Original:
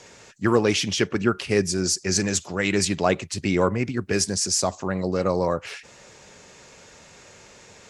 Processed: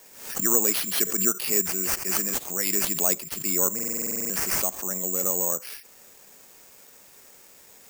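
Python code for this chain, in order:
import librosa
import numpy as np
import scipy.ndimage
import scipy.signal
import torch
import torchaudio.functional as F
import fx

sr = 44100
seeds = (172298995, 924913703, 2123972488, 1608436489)

y = scipy.signal.sosfilt(scipy.signal.butter(4, 180.0, 'highpass', fs=sr, output='sos'), x)
y = (np.kron(y[::6], np.eye(6)[0]) * 6)[:len(y)]
y = fx.buffer_glitch(y, sr, at_s=(3.74,), block=2048, repeats=11)
y = fx.pre_swell(y, sr, db_per_s=85.0)
y = F.gain(torch.from_numpy(y), -10.0).numpy()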